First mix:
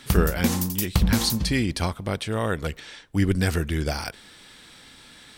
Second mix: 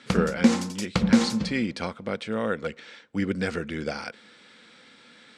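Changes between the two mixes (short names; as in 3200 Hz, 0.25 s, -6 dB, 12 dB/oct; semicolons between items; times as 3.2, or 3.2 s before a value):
speech -6.0 dB; master: add speaker cabinet 160–7300 Hz, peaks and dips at 220 Hz +9 dB, 500 Hz +9 dB, 1400 Hz +6 dB, 2200 Hz +5 dB, 6000 Hz -3 dB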